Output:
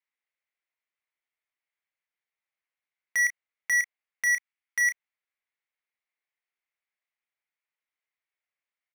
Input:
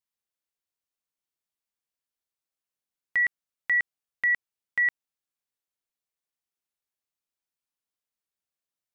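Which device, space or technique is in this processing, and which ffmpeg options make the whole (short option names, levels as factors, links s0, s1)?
megaphone: -filter_complex "[0:a]highpass=500,lowpass=3100,equalizer=f=2100:t=o:w=0.52:g=12,asoftclip=type=hard:threshold=0.0668,asplit=2[s0][s1];[s1]adelay=32,volume=0.376[s2];[s0][s2]amix=inputs=2:normalize=0,asettb=1/sr,asplit=3[s3][s4][s5];[s3]atrim=end=4.244[s6];[s4]atrim=start=4.24:end=4.84,asetpts=PTS-STARTPTS,afade=t=in:d=0.004:c=qsin,afade=t=out:st=0.596:d=0.004:c=qsin,highpass=880[s7];[s5]atrim=start=4.836[s8];[s6][s7]acrossfade=d=0.004:c1=hsin:c2=qsin[s9];[s9][s8]acrossfade=d=0.004:c1=qsin:c2=hsin"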